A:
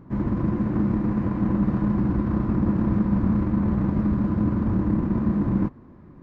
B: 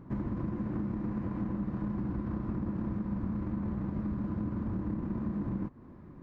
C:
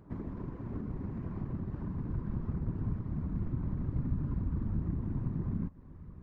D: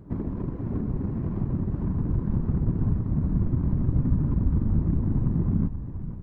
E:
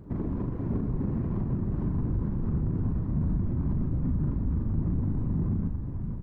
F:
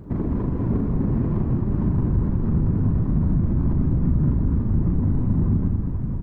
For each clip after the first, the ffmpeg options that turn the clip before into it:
ffmpeg -i in.wav -af "acompressor=threshold=-28dB:ratio=6,volume=-3dB" out.wav
ffmpeg -i in.wav -af "afftfilt=real='hypot(re,im)*cos(2*PI*random(0))':imag='hypot(re,im)*sin(2*PI*random(1))':win_size=512:overlap=0.75,asubboost=boost=4.5:cutoff=160" out.wav
ffmpeg -i in.wav -filter_complex "[0:a]asplit=2[link_01][link_02];[link_02]adynamicsmooth=sensitivity=6.5:basefreq=510,volume=2.5dB[link_03];[link_01][link_03]amix=inputs=2:normalize=0,asplit=7[link_04][link_05][link_06][link_07][link_08][link_09][link_10];[link_05]adelay=480,afreqshift=-41,volume=-11dB[link_11];[link_06]adelay=960,afreqshift=-82,volume=-16.2dB[link_12];[link_07]adelay=1440,afreqshift=-123,volume=-21.4dB[link_13];[link_08]adelay=1920,afreqshift=-164,volume=-26.6dB[link_14];[link_09]adelay=2400,afreqshift=-205,volume=-31.8dB[link_15];[link_10]adelay=2880,afreqshift=-246,volume=-37dB[link_16];[link_04][link_11][link_12][link_13][link_14][link_15][link_16]amix=inputs=7:normalize=0,volume=2.5dB" out.wav
ffmpeg -i in.wav -filter_complex "[0:a]alimiter=limit=-21.5dB:level=0:latency=1:release=42,asplit=2[link_01][link_02];[link_02]adelay=40,volume=-7dB[link_03];[link_01][link_03]amix=inputs=2:normalize=0" out.wav
ffmpeg -i in.wav -af "aecho=1:1:202:0.473,volume=6.5dB" out.wav

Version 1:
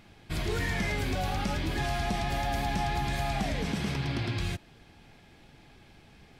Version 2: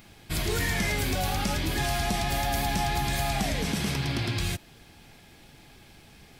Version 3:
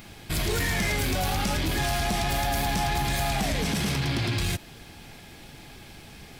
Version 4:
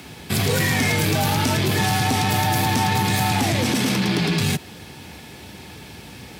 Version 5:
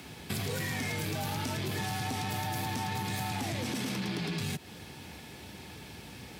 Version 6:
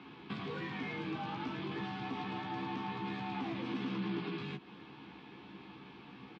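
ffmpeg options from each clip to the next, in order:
ffmpeg -i in.wav -af "aemphasis=mode=production:type=50kf,volume=2dB" out.wav
ffmpeg -i in.wav -filter_complex "[0:a]asplit=2[link_01][link_02];[link_02]alimiter=level_in=2dB:limit=-24dB:level=0:latency=1,volume=-2dB,volume=1dB[link_03];[link_01][link_03]amix=inputs=2:normalize=0,asoftclip=type=tanh:threshold=-20.5dB" out.wav
ffmpeg -i in.wav -af "afreqshift=57,volume=6dB" out.wav
ffmpeg -i in.wav -af "acompressor=threshold=-26dB:ratio=3,volume=-7dB" out.wav
ffmpeg -i in.wav -filter_complex "[0:a]highpass=170,equalizer=frequency=180:width_type=q:width=4:gain=4,equalizer=frequency=310:width_type=q:width=4:gain=7,equalizer=frequency=590:width_type=q:width=4:gain=-9,equalizer=frequency=1100:width_type=q:width=4:gain=9,equalizer=frequency=1900:width_type=q:width=4:gain=-5,lowpass=frequency=3300:width=0.5412,lowpass=frequency=3300:width=1.3066,asplit=2[link_01][link_02];[link_02]adelay=15,volume=-4.5dB[link_03];[link_01][link_03]amix=inputs=2:normalize=0,volume=-6dB" out.wav

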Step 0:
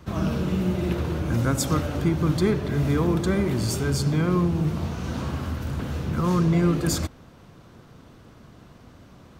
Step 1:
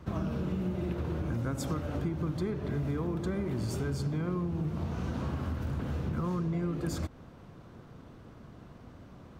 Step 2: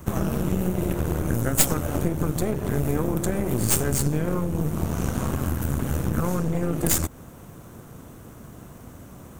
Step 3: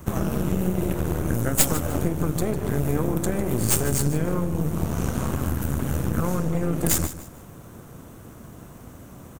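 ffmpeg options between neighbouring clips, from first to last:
ffmpeg -i in.wav -af "highshelf=frequency=2400:gain=-8.5,acompressor=threshold=-28dB:ratio=6,volume=-1.5dB" out.wav
ffmpeg -i in.wav -af "aexciter=amount=5.7:drive=8.1:freq=6600,aeval=exprs='0.237*(cos(1*acos(clip(val(0)/0.237,-1,1)))-cos(1*PI/2))+0.106*(cos(4*acos(clip(val(0)/0.237,-1,1)))-cos(4*PI/2))':channel_layout=same,volume=7dB" out.wav
ffmpeg -i in.wav -af "aecho=1:1:151|302|453:0.2|0.0579|0.0168" out.wav

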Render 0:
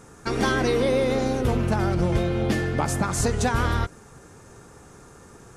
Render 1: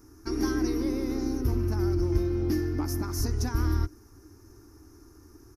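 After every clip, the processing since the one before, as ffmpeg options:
ffmpeg -i in.wav -af "firequalizer=gain_entry='entry(100,0);entry(150,-23);entry(310,5);entry(490,-20);entry(1000,-12);entry(2100,-15);entry(3400,-22);entry(5400,1);entry(7900,-22);entry(12000,5)':delay=0.05:min_phase=1" out.wav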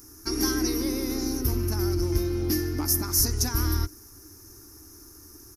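ffmpeg -i in.wav -af "crystalizer=i=4.5:c=0" out.wav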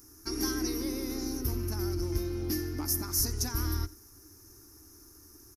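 ffmpeg -i in.wav -af "aecho=1:1:87:0.075,volume=-6dB" out.wav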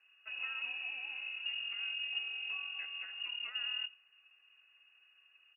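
ffmpeg -i in.wav -af "lowpass=frequency=2500:width_type=q:width=0.5098,lowpass=frequency=2500:width_type=q:width=0.6013,lowpass=frequency=2500:width_type=q:width=0.9,lowpass=frequency=2500:width_type=q:width=2.563,afreqshift=-2900,volume=-8dB" out.wav

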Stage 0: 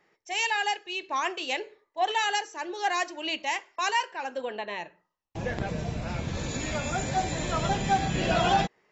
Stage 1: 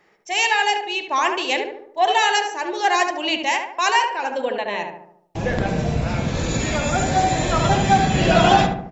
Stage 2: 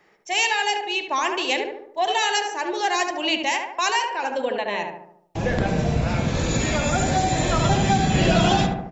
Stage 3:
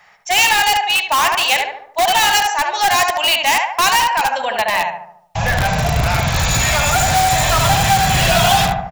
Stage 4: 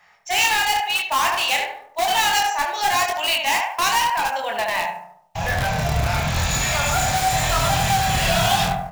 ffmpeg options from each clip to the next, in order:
ffmpeg -i in.wav -filter_complex "[0:a]asplit=2[link_01][link_02];[link_02]adelay=73,lowpass=frequency=1400:poles=1,volume=-3.5dB,asplit=2[link_03][link_04];[link_04]adelay=73,lowpass=frequency=1400:poles=1,volume=0.54,asplit=2[link_05][link_06];[link_06]adelay=73,lowpass=frequency=1400:poles=1,volume=0.54,asplit=2[link_07][link_08];[link_08]adelay=73,lowpass=frequency=1400:poles=1,volume=0.54,asplit=2[link_09][link_10];[link_10]adelay=73,lowpass=frequency=1400:poles=1,volume=0.54,asplit=2[link_11][link_12];[link_12]adelay=73,lowpass=frequency=1400:poles=1,volume=0.54,asplit=2[link_13][link_14];[link_14]adelay=73,lowpass=frequency=1400:poles=1,volume=0.54[link_15];[link_01][link_03][link_05][link_07][link_09][link_11][link_13][link_15]amix=inputs=8:normalize=0,volume=8dB" out.wav
ffmpeg -i in.wav -filter_complex "[0:a]acrossover=split=360|3000[link_01][link_02][link_03];[link_02]acompressor=threshold=-22dB:ratio=3[link_04];[link_01][link_04][link_03]amix=inputs=3:normalize=0" out.wav
ffmpeg -i in.wav -filter_complex "[0:a]firequalizer=gain_entry='entry(110,0);entry(330,-24);entry(690,3)':delay=0.05:min_phase=1,asplit=2[link_01][link_02];[link_02]aeval=exprs='(mod(7.08*val(0)+1,2)-1)/7.08':channel_layout=same,volume=-4.5dB[link_03];[link_01][link_03]amix=inputs=2:normalize=0,volume=4.5dB" out.wav
ffmpeg -i in.wav -af "acrusher=bits=6:mode=log:mix=0:aa=0.000001,flanger=delay=22.5:depth=6.3:speed=0.91,volume=-2.5dB" out.wav

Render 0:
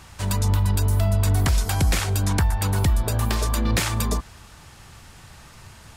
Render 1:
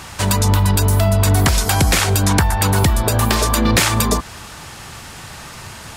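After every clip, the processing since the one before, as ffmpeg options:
ffmpeg -i in.wav -filter_complex "[0:a]lowshelf=frequency=98:gain=-11,asplit=2[link_01][link_02];[link_02]alimiter=limit=-22dB:level=0:latency=1:release=195,volume=1.5dB[link_03];[link_01][link_03]amix=inputs=2:normalize=0,volume=6.5dB" out.wav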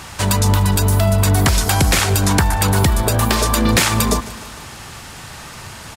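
ffmpeg -i in.wav -af "aecho=1:1:150|300|450|600|750:0.133|0.0787|0.0464|0.0274|0.0162" out.wav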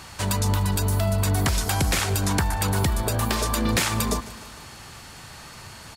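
ffmpeg -i in.wav -af "aeval=exprs='val(0)+0.00631*sin(2*PI*4400*n/s)':channel_layout=same,volume=-8dB" out.wav

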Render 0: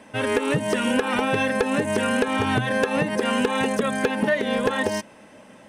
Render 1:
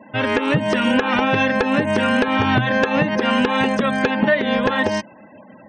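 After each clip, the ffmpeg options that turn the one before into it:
ffmpeg -i in.wav -af "lowpass=5200,afftfilt=real='re*gte(hypot(re,im),0.00562)':imag='im*gte(hypot(re,im),0.00562)':win_size=1024:overlap=0.75,equalizer=frequency=440:width=5.4:gain=-9,volume=5.5dB" out.wav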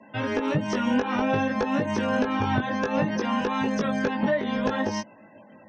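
ffmpeg -i in.wav -filter_complex "[0:a]acrossover=split=140|630|1400[link_01][link_02][link_03][link_04];[link_04]acompressor=threshold=-33dB:ratio=6[link_05];[link_01][link_02][link_03][link_05]amix=inputs=4:normalize=0,lowpass=frequency=5900:width_type=q:width=4.3,flanger=delay=18:depth=2.3:speed=0.58,volume=-3.5dB" out.wav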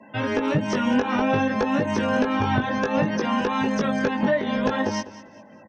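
ffmpeg -i in.wav -af "aecho=1:1:199|398|597:0.15|0.0479|0.0153,volume=2.5dB" out.wav

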